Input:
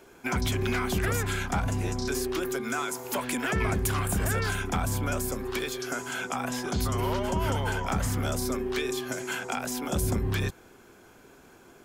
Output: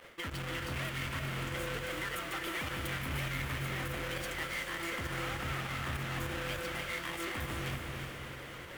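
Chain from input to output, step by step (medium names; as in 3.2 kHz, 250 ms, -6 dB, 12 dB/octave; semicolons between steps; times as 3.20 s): square wave that keeps the level; high-order bell 1.5 kHz +8.5 dB; reverse; compression 6:1, threshold -33 dBFS, peak gain reduction 15.5 dB; reverse; peak limiter -27 dBFS, peak gain reduction 4 dB; volume shaper 149 bpm, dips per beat 1, -13 dB, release 94 ms; on a send: echo that smears into a reverb 465 ms, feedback 54%, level -3.5 dB; on the sum: speed mistake 33 rpm record played at 45 rpm; trim -3 dB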